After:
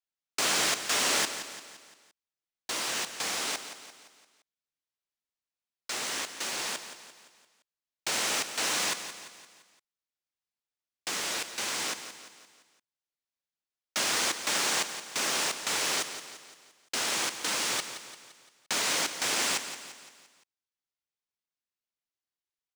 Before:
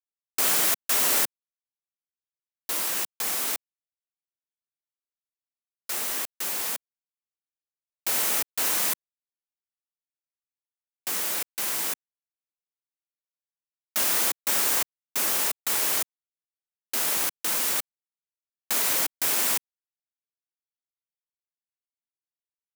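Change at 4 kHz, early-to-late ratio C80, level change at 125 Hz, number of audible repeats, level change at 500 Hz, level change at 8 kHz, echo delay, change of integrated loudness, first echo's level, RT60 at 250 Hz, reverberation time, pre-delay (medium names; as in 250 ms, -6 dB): +2.0 dB, no reverb, no reading, 4, +0.5 dB, -3.0 dB, 172 ms, -5.0 dB, -11.0 dB, no reverb, no reverb, no reverb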